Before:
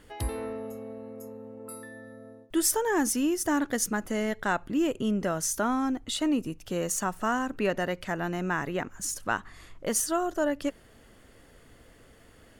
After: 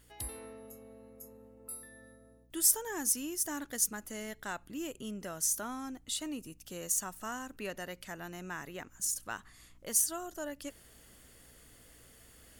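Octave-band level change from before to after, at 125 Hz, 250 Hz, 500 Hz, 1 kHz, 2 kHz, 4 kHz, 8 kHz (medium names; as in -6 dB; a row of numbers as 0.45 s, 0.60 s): -13.5 dB, -14.0 dB, -13.5 dB, -12.5 dB, -10.5 dB, -5.0 dB, 0.0 dB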